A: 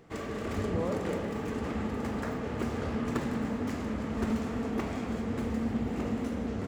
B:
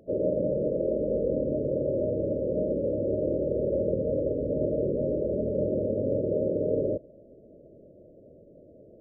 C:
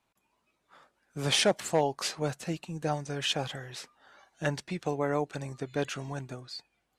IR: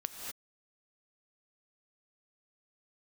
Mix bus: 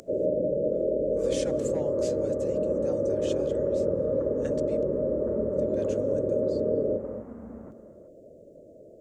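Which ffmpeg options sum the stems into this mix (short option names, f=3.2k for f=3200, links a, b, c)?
-filter_complex "[0:a]bandreject=f=50:t=h:w=6,bandreject=f=100:t=h:w=6,aeval=exprs='sgn(val(0))*max(abs(val(0))-0.00224,0)':c=same,lowpass=f=1.4k:w=0.5412,lowpass=f=1.4k:w=1.3066,adelay=1050,volume=-13dB,asplit=3[a][b][c];[b]volume=-5dB[d];[c]volume=-12.5dB[e];[1:a]acompressor=mode=upward:threshold=-47dB:ratio=2.5,lowshelf=f=430:g=-11,volume=2.5dB,asplit=2[f][g];[g]volume=-3dB[h];[2:a]volume=-14dB,asplit=3[i][j][k];[i]atrim=end=4.83,asetpts=PTS-STARTPTS,afade=t=out:st=4.826:d=0.004:c=hsin[l];[j]atrim=start=4.83:end=5.53,asetpts=PTS-STARTPTS,volume=0[m];[k]atrim=start=5.53,asetpts=PTS-STARTPTS,afade=t=in:d=0.004:c=hsin[n];[l][m][n]concat=n=3:v=0:a=1,asplit=2[o][p];[p]volume=-21.5dB[q];[3:a]atrim=start_sample=2205[r];[d][h][q]amix=inputs=3:normalize=0[s];[s][r]afir=irnorm=-1:irlink=0[t];[e]aecho=0:1:368:1[u];[a][f][o][t][u]amix=inputs=5:normalize=0,equalizer=f=7.1k:w=1.7:g=12,acrossover=split=490[v][w];[w]acompressor=threshold=-35dB:ratio=1.5[x];[v][x]amix=inputs=2:normalize=0"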